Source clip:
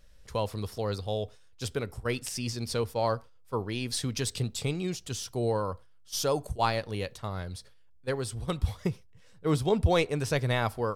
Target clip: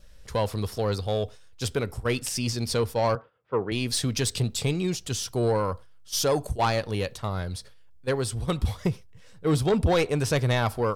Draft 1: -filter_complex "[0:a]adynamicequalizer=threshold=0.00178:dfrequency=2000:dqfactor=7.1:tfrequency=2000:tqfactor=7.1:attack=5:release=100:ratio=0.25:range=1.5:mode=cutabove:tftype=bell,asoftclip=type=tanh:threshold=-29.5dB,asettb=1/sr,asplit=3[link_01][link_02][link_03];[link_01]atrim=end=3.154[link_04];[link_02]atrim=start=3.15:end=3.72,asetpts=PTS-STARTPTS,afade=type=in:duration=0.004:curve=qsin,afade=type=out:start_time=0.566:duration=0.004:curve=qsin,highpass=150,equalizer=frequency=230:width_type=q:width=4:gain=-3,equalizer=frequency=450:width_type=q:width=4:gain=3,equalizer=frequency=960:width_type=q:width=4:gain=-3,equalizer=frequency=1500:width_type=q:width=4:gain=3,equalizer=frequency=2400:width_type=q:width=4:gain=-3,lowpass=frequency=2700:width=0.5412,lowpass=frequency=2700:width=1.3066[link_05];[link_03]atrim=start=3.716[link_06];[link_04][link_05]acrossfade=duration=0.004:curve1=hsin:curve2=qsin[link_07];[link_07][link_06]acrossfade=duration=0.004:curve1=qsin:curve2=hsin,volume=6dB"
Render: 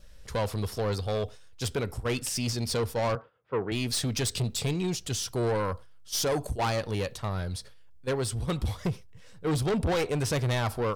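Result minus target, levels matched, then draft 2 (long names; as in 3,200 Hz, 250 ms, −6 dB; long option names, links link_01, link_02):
soft clipping: distortion +6 dB
-filter_complex "[0:a]adynamicequalizer=threshold=0.00178:dfrequency=2000:dqfactor=7.1:tfrequency=2000:tqfactor=7.1:attack=5:release=100:ratio=0.25:range=1.5:mode=cutabove:tftype=bell,asoftclip=type=tanh:threshold=-22dB,asettb=1/sr,asplit=3[link_01][link_02][link_03];[link_01]atrim=end=3.154[link_04];[link_02]atrim=start=3.15:end=3.72,asetpts=PTS-STARTPTS,afade=type=in:duration=0.004:curve=qsin,afade=type=out:start_time=0.566:duration=0.004:curve=qsin,highpass=150,equalizer=frequency=230:width_type=q:width=4:gain=-3,equalizer=frequency=450:width_type=q:width=4:gain=3,equalizer=frequency=960:width_type=q:width=4:gain=-3,equalizer=frequency=1500:width_type=q:width=4:gain=3,equalizer=frequency=2400:width_type=q:width=4:gain=-3,lowpass=frequency=2700:width=0.5412,lowpass=frequency=2700:width=1.3066[link_05];[link_03]atrim=start=3.716[link_06];[link_04][link_05]acrossfade=duration=0.004:curve1=hsin:curve2=qsin[link_07];[link_07][link_06]acrossfade=duration=0.004:curve1=qsin:curve2=hsin,volume=6dB"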